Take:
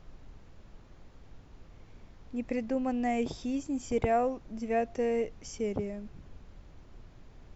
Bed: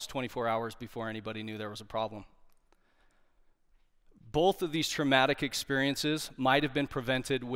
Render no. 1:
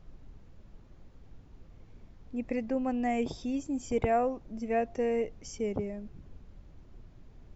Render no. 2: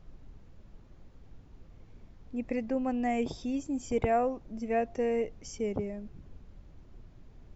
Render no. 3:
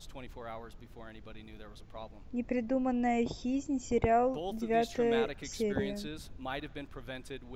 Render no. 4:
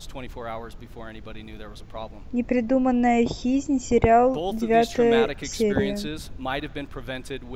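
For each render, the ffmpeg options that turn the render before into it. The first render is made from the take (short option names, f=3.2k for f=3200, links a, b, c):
-af "afftdn=nr=6:nf=-55"
-af anull
-filter_complex "[1:a]volume=-12.5dB[a];[0:a][a]amix=inputs=2:normalize=0"
-af "volume=10dB"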